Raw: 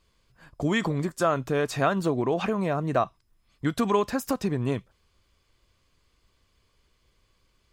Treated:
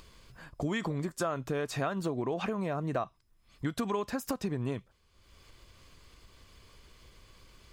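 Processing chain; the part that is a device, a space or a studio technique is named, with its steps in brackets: upward and downward compression (upward compressor, threshold -41 dBFS; compression 3:1, threshold -28 dBFS, peak gain reduction 8.5 dB); trim -2 dB

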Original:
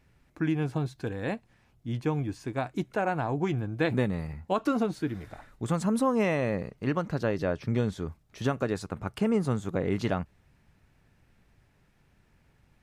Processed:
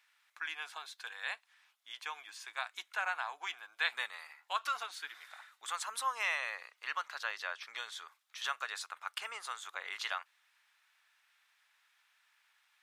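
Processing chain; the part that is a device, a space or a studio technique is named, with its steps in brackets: headphones lying on a table (high-pass 1.1 kHz 24 dB/octave; peaking EQ 3.5 kHz +5.5 dB 0.4 oct); trim +1 dB

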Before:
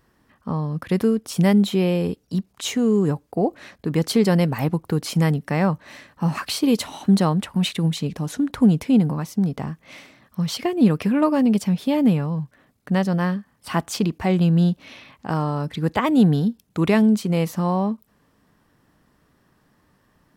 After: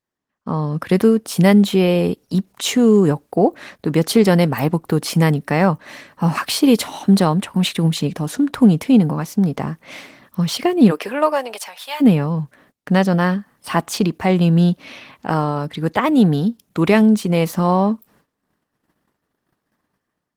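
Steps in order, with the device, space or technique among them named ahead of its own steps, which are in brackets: 10.90–12.00 s: high-pass 300 Hz -> 990 Hz 24 dB/octave; video call (high-pass 180 Hz 6 dB/octave; level rider gain up to 9 dB; gate -51 dBFS, range -21 dB; Opus 20 kbps 48 kHz)

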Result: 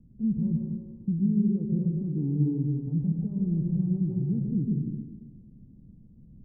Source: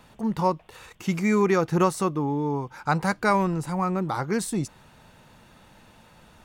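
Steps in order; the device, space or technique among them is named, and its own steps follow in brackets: club heard from the street (peak limiter -20 dBFS, peak gain reduction 11 dB; low-pass 250 Hz 24 dB/octave; reverberation RT60 1.5 s, pre-delay 116 ms, DRR -0.5 dB); trim +2.5 dB

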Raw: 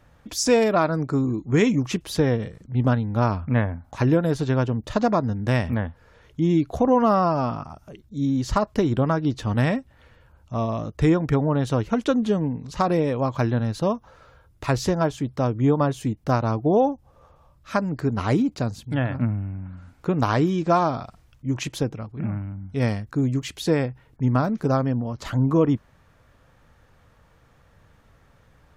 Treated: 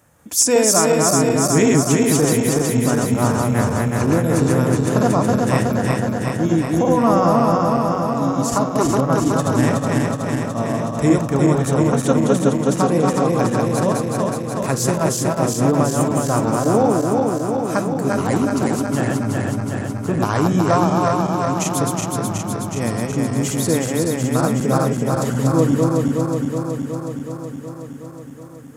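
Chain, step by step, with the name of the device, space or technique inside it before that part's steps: backward echo that repeats 185 ms, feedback 84%, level -2 dB; budget condenser microphone (high-pass 110 Hz; resonant high shelf 5.9 kHz +12 dB, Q 1.5); de-hum 125.7 Hz, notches 39; trim +1.5 dB

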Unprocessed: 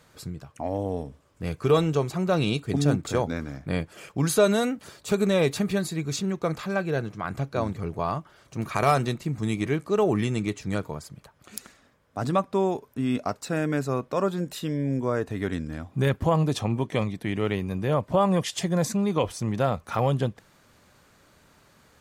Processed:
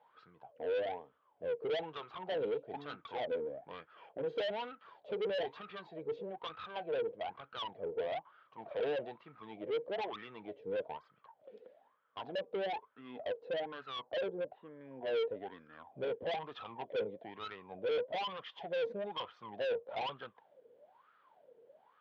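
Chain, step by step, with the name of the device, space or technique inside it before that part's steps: 13.96–14.81 s: low-pass 1.3 kHz 12 dB/octave; wah-wah guitar rig (wah-wah 1.1 Hz 460–1300 Hz, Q 16; valve stage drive 46 dB, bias 0.25; cabinet simulation 95–4100 Hz, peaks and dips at 470 Hz +5 dB, 1.2 kHz -9 dB, 3.2 kHz +9 dB); trim +11 dB

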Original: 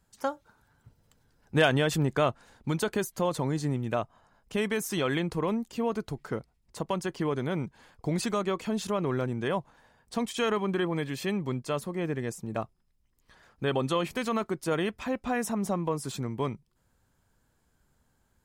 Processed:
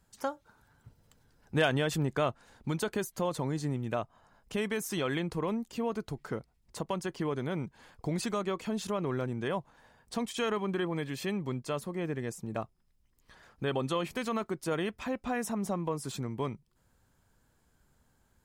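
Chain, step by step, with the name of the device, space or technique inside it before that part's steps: parallel compression (in parallel at 0 dB: compression, threshold -41 dBFS, peak gain reduction 21.5 dB); on the sum: trim -5 dB

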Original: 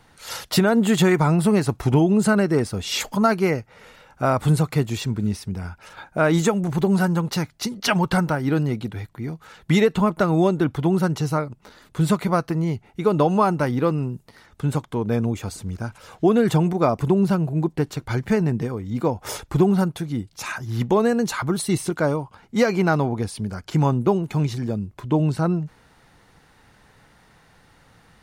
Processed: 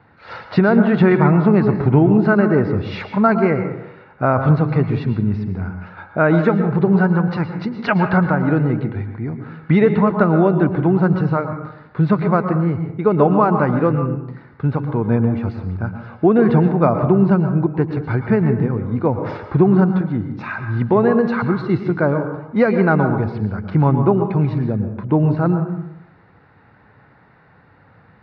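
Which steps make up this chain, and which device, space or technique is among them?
distance through air 360 m; guitar cabinet (cabinet simulation 89–4600 Hz, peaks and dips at 100 Hz +5 dB, 1.5 kHz +3 dB, 3.2 kHz -10 dB); plate-style reverb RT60 0.83 s, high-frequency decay 0.5×, pre-delay 100 ms, DRR 7 dB; trim +4.5 dB

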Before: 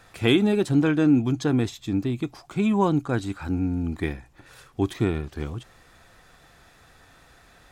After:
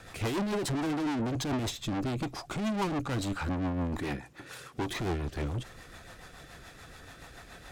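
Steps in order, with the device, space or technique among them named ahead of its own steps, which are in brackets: 3.99–4.87 s: high-pass 130 Hz 12 dB/octave; overdriven rotary cabinet (valve stage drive 37 dB, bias 0.4; rotary cabinet horn 7 Hz); dynamic bell 860 Hz, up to +4 dB, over -58 dBFS, Q 1.6; trim +8.5 dB

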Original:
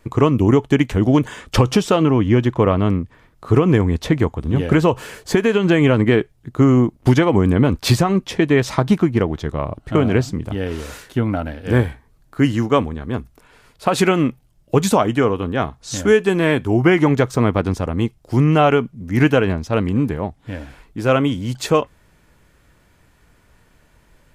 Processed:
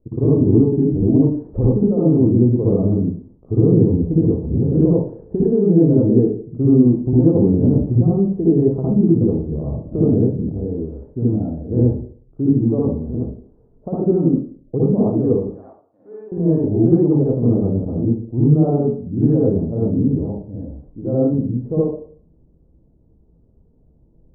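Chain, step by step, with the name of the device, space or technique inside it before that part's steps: 15.41–16.32 s: high-pass 1.2 kHz 12 dB/octave; next room (low-pass 510 Hz 24 dB/octave; reverberation RT60 0.50 s, pre-delay 55 ms, DRR -7 dB); trim -6.5 dB

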